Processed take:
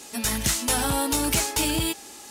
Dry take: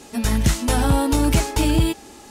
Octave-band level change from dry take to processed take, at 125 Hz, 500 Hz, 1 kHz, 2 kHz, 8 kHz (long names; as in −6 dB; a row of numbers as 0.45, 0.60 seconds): −11.5, −6.0, −3.5, −0.5, +4.0 decibels